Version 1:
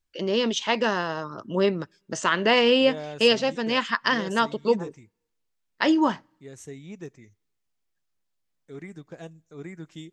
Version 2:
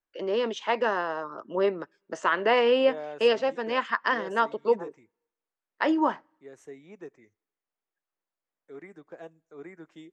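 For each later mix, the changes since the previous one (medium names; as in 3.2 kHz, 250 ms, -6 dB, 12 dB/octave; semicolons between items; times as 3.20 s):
master: add three-band isolator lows -19 dB, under 300 Hz, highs -14 dB, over 2.1 kHz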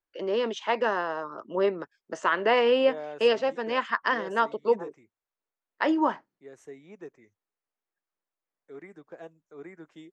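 reverb: off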